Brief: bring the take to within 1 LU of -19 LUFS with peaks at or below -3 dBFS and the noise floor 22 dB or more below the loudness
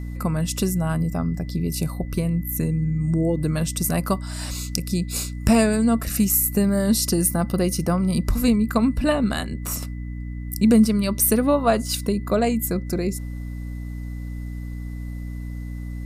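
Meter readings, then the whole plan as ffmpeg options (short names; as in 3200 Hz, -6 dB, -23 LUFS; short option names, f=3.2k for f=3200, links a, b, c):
hum 60 Hz; harmonics up to 300 Hz; hum level -29 dBFS; steady tone 2000 Hz; tone level -50 dBFS; loudness -22.0 LUFS; peak -1.5 dBFS; loudness target -19.0 LUFS
-> -af "bandreject=f=60:t=h:w=4,bandreject=f=120:t=h:w=4,bandreject=f=180:t=h:w=4,bandreject=f=240:t=h:w=4,bandreject=f=300:t=h:w=4"
-af "bandreject=f=2k:w=30"
-af "volume=3dB,alimiter=limit=-3dB:level=0:latency=1"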